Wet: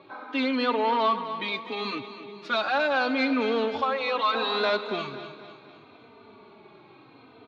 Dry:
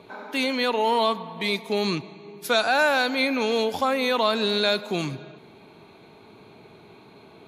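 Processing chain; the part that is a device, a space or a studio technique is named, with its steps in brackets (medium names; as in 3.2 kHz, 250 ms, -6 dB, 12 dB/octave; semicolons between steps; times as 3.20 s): 4.34–4.77 s: peaking EQ 820 Hz +14.5 dB 1.1 oct; barber-pole flanger into a guitar amplifier (endless flanger 3.2 ms -0.73 Hz; saturation -18.5 dBFS, distortion -16 dB; cabinet simulation 93–4300 Hz, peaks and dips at 170 Hz -9 dB, 260 Hz +4 dB, 1.2 kHz +7 dB); feedback delay 252 ms, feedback 48%, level -12 dB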